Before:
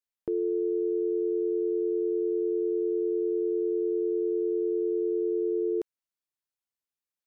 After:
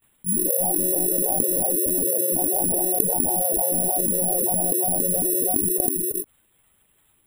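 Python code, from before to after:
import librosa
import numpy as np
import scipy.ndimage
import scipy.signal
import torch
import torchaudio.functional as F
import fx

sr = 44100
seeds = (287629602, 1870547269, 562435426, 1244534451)

p1 = fx.peak_eq(x, sr, hz=120.0, db=14.5, octaves=1.9)
p2 = fx.rider(p1, sr, range_db=10, speed_s=2.0)
p3 = p1 + F.gain(torch.from_numpy(p2), 1.5).numpy()
p4 = fx.quant_float(p3, sr, bits=8)
p5 = fx.granulator(p4, sr, seeds[0], grain_ms=100.0, per_s=20.0, spray_ms=100.0, spread_st=12)
p6 = p5 + fx.echo_single(p5, sr, ms=329, db=-8.5, dry=0)
p7 = fx.lpc_monotone(p6, sr, seeds[1], pitch_hz=180.0, order=16)
p8 = (np.kron(p7[::4], np.eye(4)[0]) * 4)[:len(p7)]
p9 = fx.env_flatten(p8, sr, amount_pct=70)
y = F.gain(torch.from_numpy(p9), -18.0).numpy()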